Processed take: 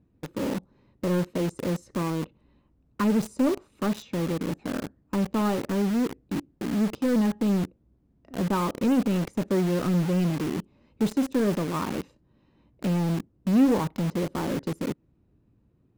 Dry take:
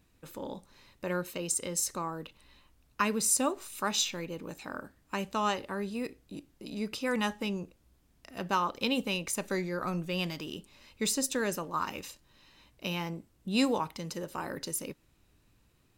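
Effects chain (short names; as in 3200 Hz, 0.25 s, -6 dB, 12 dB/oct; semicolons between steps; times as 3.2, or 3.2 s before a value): band-pass 300 Hz, Q 0.65; low shelf 280 Hz +12 dB; in parallel at -4 dB: companded quantiser 2-bit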